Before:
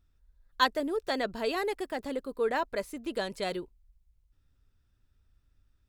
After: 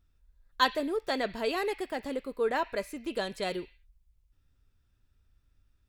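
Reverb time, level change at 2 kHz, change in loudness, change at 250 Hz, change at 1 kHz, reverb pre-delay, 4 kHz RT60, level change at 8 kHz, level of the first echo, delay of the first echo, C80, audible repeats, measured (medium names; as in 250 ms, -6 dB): 0.45 s, 0.0 dB, 0.0 dB, 0.0 dB, 0.0 dB, 3 ms, 0.60 s, 0.0 dB, no echo, no echo, 15.0 dB, no echo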